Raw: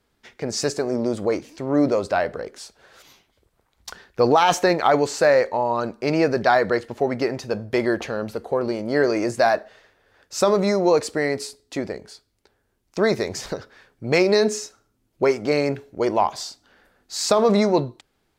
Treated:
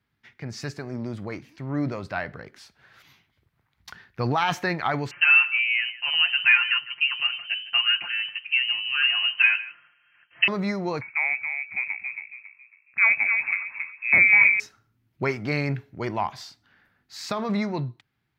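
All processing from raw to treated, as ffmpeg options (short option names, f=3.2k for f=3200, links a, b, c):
-filter_complex "[0:a]asettb=1/sr,asplit=3[a][b][c];[a]atrim=end=5.114[d];[b]atrim=start=5.11:end=10.48,asetpts=PTS-STARTPTS,afade=t=in:d=0.004:c=qsin,afade=t=out:st=5.366:d=0.004:c=qsin,aecho=1:1:5.6:0.71,atrim=end_sample=236817,aecho=1:1:155:0.141,atrim=end_sample=236817,lowpass=f=2.7k:t=q:w=0.5098,lowpass=f=2.7k:t=q:w=0.6013,lowpass=f=2.7k:t=q:w=0.9,lowpass=f=2.7k:t=q:w=2.563,afreqshift=-3200[e];[c]atrim=start=10.476[f];[d][e]acrossfade=d=0.004:c1=hsin:c2=qsin[g];[g][f]acrossfade=d=0.004:c1=qsin:c2=hsin,asettb=1/sr,asplit=3[h][i][j];[h]atrim=end=11.014[k];[i]atrim=start=11.01:end=14.6,asetpts=PTS-STARTPTS,afade=t=in:d=0.004:c=qsin,afade=t=out:st=3.586:d=0.004:c=qsin,asplit=2[l][m];[m]adelay=275,lowpass=f=1k:p=1,volume=-4.5dB,asplit=2[n][o];[o]adelay=275,lowpass=f=1k:p=1,volume=0.34,asplit=2[p][q];[q]adelay=275,lowpass=f=1k:p=1,volume=0.34,asplit=2[r][s];[s]adelay=275,lowpass=f=1k:p=1,volume=0.34[t];[l][n][p][r][t]amix=inputs=5:normalize=0,atrim=end_sample=158319,lowpass=f=2.3k:t=q:w=0.5098,lowpass=f=2.3k:t=q:w=0.6013,lowpass=f=2.3k:t=q:w=0.9,lowpass=f=2.3k:t=q:w=2.563,afreqshift=-2700[u];[j]atrim=start=14.596[v];[k][u]acrossfade=d=0.004:c1=hsin:c2=qsin[w];[w][v]acrossfade=d=0.004:c1=qsin:c2=hsin,highpass=57,dynaudnorm=f=410:g=11:m=11.5dB,equalizer=f=125:t=o:w=1:g=10,equalizer=f=500:t=o:w=1:g=-10,equalizer=f=2k:t=o:w=1:g=6,equalizer=f=8k:t=o:w=1:g=-11,volume=-8dB"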